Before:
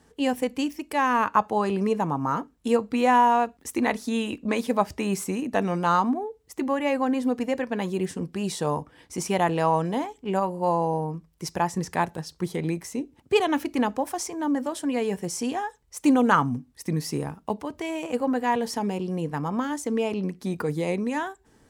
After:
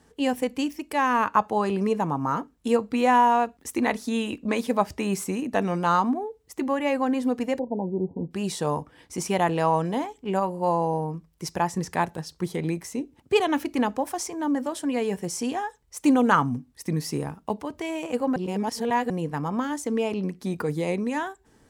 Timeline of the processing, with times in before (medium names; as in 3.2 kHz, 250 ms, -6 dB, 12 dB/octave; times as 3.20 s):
7.59–8.31 s: brick-wall FIR low-pass 1 kHz
18.36–19.10 s: reverse